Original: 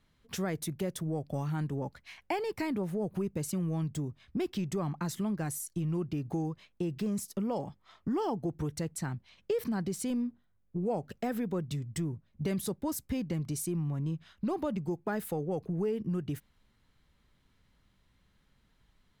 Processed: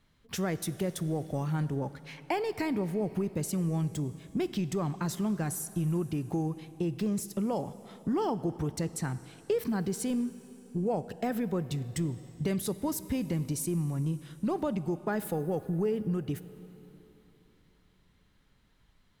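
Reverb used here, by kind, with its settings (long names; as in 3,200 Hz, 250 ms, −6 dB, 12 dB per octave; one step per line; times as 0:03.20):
dense smooth reverb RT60 3.5 s, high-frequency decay 1×, DRR 14 dB
level +2 dB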